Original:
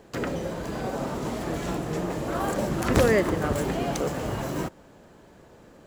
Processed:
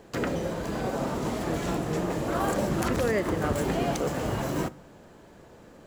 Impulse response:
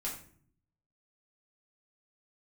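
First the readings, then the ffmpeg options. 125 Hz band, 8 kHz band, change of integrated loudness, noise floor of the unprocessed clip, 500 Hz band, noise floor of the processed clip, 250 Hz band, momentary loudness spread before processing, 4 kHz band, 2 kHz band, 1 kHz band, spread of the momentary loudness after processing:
-1.0 dB, -1.0 dB, -1.5 dB, -52 dBFS, -2.0 dB, -52 dBFS, -0.5 dB, 10 LU, -1.0 dB, -2.0 dB, -0.5 dB, 5 LU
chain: -filter_complex "[0:a]alimiter=limit=-16.5dB:level=0:latency=1:release=211,asplit=2[a][b];[1:a]atrim=start_sample=2205[c];[b][c]afir=irnorm=-1:irlink=0,volume=-17.5dB[d];[a][d]amix=inputs=2:normalize=0"

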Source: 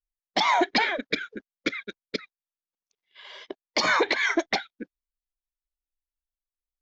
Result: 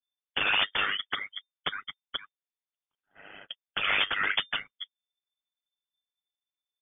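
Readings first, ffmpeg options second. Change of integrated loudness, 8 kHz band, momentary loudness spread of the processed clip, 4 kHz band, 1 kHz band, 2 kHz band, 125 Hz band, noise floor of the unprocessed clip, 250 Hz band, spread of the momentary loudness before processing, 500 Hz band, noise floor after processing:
-3.0 dB, n/a, 18 LU, +1.0 dB, -8.5 dB, -2.5 dB, -4.5 dB, under -85 dBFS, -17.5 dB, 21 LU, -14.0 dB, under -85 dBFS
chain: -af "aecho=1:1:7.1:0.33,aeval=exprs='val(0)*sin(2*PI*50*n/s)':c=same,aeval=exprs='(mod(6.31*val(0)+1,2)-1)/6.31':c=same,lowpass=f=3.1k:t=q:w=0.5098,lowpass=f=3.1k:t=q:w=0.6013,lowpass=f=3.1k:t=q:w=0.9,lowpass=f=3.1k:t=q:w=2.563,afreqshift=-3600"

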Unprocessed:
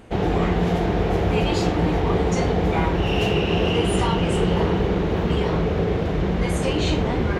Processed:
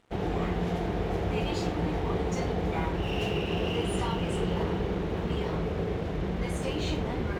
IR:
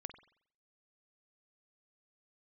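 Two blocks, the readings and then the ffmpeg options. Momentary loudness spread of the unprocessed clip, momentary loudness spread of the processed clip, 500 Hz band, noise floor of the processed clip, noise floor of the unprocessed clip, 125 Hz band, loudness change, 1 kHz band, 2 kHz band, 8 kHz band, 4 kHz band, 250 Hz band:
2 LU, 2 LU, -9.0 dB, -33 dBFS, -24 dBFS, -9.0 dB, -9.0 dB, -9.0 dB, -9.0 dB, -8.5 dB, -9.0 dB, -9.0 dB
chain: -af "aeval=exprs='sgn(val(0))*max(abs(val(0))-0.00631,0)':c=same,volume=-8.5dB"

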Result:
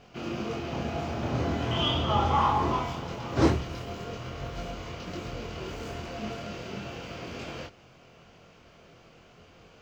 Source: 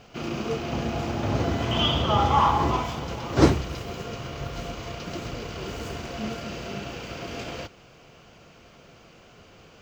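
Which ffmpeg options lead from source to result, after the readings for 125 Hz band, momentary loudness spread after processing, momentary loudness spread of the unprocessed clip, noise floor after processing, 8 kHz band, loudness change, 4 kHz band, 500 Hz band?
-3.5 dB, 14 LU, 14 LU, -56 dBFS, -6.0 dB, -4.0 dB, -4.0 dB, -3.5 dB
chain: -af "highshelf=f=5.6k:g=-5,flanger=delay=22.5:depth=2.2:speed=0.4,asoftclip=type=tanh:threshold=-10.5dB"

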